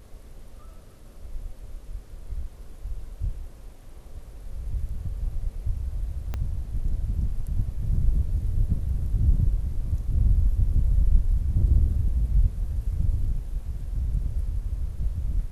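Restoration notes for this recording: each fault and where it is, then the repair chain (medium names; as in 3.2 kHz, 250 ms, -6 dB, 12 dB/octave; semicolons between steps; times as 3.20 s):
6.34 s: pop -18 dBFS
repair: de-click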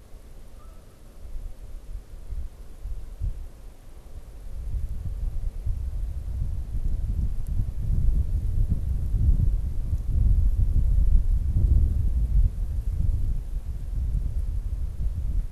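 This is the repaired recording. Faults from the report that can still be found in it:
6.34 s: pop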